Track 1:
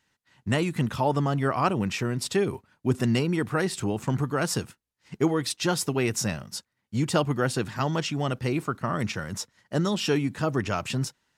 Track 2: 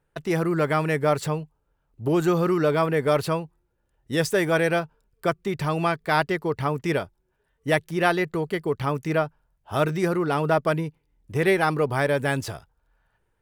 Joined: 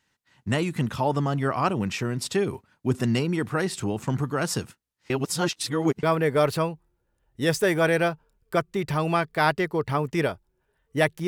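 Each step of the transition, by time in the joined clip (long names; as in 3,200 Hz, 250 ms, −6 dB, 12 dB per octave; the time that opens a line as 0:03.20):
track 1
0:05.10–0:06.03: reverse
0:06.03: continue with track 2 from 0:02.74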